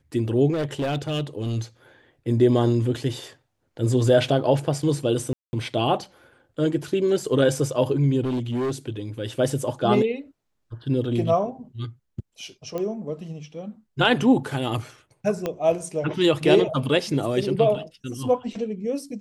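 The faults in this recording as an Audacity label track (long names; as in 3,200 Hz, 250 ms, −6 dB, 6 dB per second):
0.520000	1.570000	clipping −21.5 dBFS
5.330000	5.530000	drop-out 200 ms
8.230000	8.710000	clipping −22 dBFS
12.780000	12.780000	click −17 dBFS
15.460000	15.460000	click −13 dBFS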